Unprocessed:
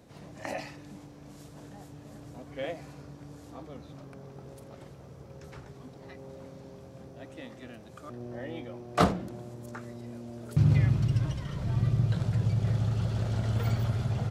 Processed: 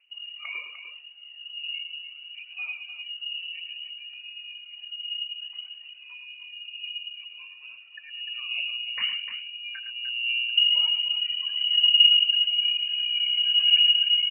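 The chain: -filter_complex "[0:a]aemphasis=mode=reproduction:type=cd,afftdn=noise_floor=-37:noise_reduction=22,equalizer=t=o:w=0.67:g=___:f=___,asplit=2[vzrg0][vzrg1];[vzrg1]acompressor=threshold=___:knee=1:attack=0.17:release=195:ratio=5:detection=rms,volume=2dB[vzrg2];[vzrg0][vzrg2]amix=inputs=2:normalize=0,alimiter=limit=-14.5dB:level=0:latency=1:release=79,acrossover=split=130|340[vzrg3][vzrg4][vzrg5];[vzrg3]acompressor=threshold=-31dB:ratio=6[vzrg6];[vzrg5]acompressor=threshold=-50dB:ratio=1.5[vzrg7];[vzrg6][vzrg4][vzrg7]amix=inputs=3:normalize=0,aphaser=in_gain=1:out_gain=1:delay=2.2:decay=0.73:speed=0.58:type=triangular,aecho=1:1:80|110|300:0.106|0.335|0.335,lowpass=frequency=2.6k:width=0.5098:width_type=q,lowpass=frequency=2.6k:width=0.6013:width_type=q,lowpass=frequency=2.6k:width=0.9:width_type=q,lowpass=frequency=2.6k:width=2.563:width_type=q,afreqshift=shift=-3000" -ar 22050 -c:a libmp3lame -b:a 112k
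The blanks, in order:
-8, 340, -38dB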